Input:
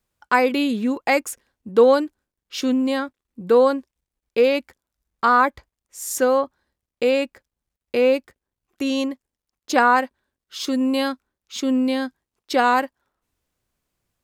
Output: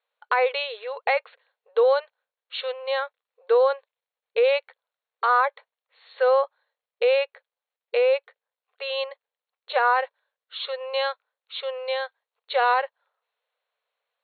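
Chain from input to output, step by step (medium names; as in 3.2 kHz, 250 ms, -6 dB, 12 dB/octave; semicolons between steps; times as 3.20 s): peak limiter -11 dBFS, peak gain reduction 8 dB; brick-wall FIR band-pass 430–4400 Hz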